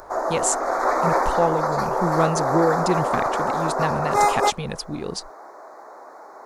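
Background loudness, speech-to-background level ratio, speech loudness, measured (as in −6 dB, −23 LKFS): −22.5 LKFS, −3.5 dB, −26.0 LKFS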